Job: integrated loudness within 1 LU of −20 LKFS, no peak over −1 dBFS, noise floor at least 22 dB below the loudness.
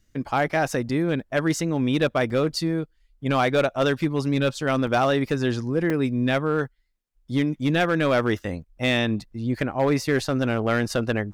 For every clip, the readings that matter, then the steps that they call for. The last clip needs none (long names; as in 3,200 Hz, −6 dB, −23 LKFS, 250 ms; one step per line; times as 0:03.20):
share of clipped samples 1.3%; peaks flattened at −14.0 dBFS; number of dropouts 3; longest dropout 2.7 ms; integrated loudness −24.0 LKFS; sample peak −14.0 dBFS; target loudness −20.0 LKFS
→ clipped peaks rebuilt −14 dBFS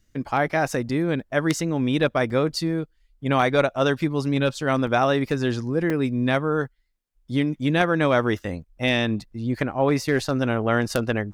share of clipped samples 0.0%; number of dropouts 3; longest dropout 2.7 ms
→ repair the gap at 0:02.30/0:04.87/0:05.90, 2.7 ms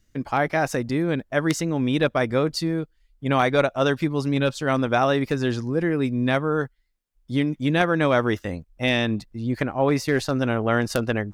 number of dropouts 0; integrated loudness −23.0 LKFS; sample peak −5.0 dBFS; target loudness −20.0 LKFS
→ level +3 dB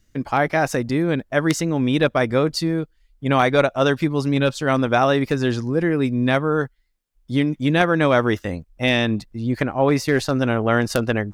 integrated loudness −20.0 LKFS; sample peak −2.0 dBFS; background noise floor −63 dBFS